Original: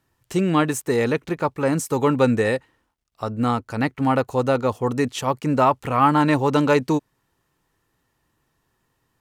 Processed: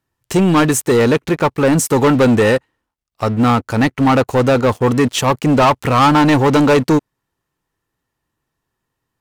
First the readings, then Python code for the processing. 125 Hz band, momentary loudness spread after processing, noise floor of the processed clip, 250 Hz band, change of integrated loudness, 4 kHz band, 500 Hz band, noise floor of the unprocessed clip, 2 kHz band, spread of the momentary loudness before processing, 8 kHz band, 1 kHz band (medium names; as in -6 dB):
+8.0 dB, 6 LU, -78 dBFS, +8.0 dB, +7.0 dB, +10.5 dB, +7.0 dB, -72 dBFS, +7.5 dB, 7 LU, +10.5 dB, +6.0 dB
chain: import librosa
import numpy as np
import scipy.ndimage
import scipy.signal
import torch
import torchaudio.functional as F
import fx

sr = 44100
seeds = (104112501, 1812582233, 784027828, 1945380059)

y = fx.leveller(x, sr, passes=3)